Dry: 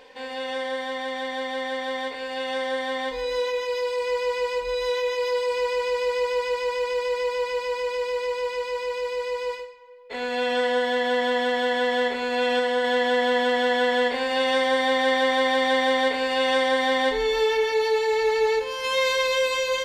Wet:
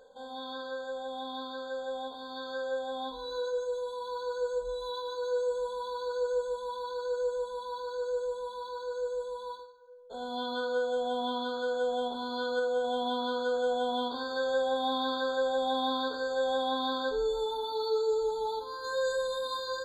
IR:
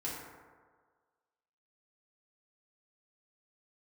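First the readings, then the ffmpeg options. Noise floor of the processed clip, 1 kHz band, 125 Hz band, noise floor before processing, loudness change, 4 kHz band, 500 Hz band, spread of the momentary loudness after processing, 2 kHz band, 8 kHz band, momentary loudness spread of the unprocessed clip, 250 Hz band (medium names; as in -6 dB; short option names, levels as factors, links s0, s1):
-43 dBFS, -7.5 dB, no reading, -34 dBFS, -8.5 dB, -9.5 dB, -8.0 dB, 9 LU, -14.5 dB, under -10 dB, 8 LU, -7.5 dB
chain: -af "afftfilt=real='re*pow(10,10/40*sin(2*PI*(0.53*log(max(b,1)*sr/1024/100)/log(2)-(1.1)*(pts-256)/sr)))':imag='im*pow(10,10/40*sin(2*PI*(0.53*log(max(b,1)*sr/1024/100)/log(2)-(1.1)*(pts-256)/sr)))':win_size=1024:overlap=0.75,afftfilt=real='re*eq(mod(floor(b*sr/1024/1600),2),0)':imag='im*eq(mod(floor(b*sr/1024/1600),2),0)':win_size=1024:overlap=0.75,volume=0.355"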